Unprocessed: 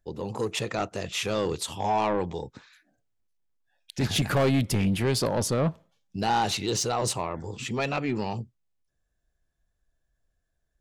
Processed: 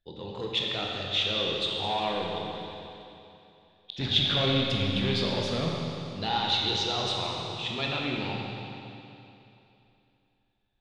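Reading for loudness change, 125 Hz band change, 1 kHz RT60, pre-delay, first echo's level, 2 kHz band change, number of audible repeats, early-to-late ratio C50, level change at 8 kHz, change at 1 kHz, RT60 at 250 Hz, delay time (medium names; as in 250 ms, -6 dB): -0.5 dB, -3.5 dB, 2.9 s, 16 ms, no echo, 0.0 dB, no echo, -0.5 dB, -13.0 dB, -3.5 dB, 2.9 s, no echo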